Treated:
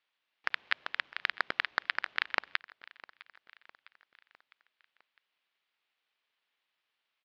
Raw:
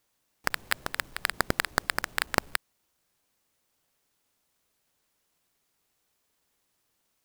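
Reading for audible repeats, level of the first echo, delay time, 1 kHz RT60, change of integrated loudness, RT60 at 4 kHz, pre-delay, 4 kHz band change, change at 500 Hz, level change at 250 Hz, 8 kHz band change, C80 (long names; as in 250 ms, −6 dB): 3, −21.0 dB, 656 ms, no reverb audible, −3.5 dB, no reverb audible, no reverb audible, −3.5 dB, −11.5 dB, −17.0 dB, below −25 dB, no reverb audible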